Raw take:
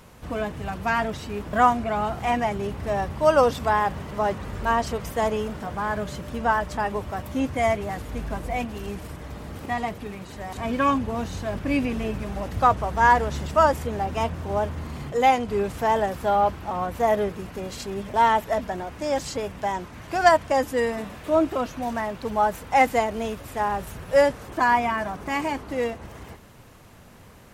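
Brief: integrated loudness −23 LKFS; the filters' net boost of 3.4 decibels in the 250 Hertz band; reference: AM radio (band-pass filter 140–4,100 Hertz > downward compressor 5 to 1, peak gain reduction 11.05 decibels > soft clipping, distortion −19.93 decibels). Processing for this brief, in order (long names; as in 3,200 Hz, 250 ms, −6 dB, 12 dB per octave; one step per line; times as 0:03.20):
band-pass filter 140–4,100 Hz
parametric band 250 Hz +4.5 dB
downward compressor 5 to 1, threshold −22 dBFS
soft clipping −18 dBFS
level +6.5 dB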